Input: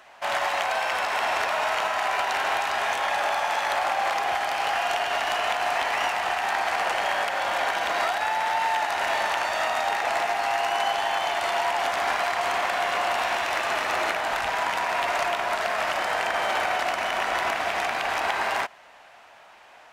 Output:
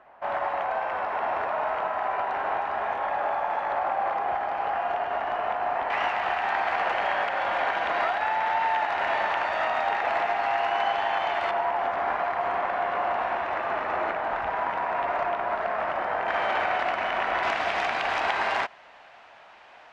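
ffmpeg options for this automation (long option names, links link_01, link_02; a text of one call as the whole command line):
ffmpeg -i in.wav -af "asetnsamples=nb_out_samples=441:pad=0,asendcmd='5.9 lowpass f 2400;11.51 lowpass f 1400;16.28 lowpass f 2500;17.43 lowpass f 4400',lowpass=1200" out.wav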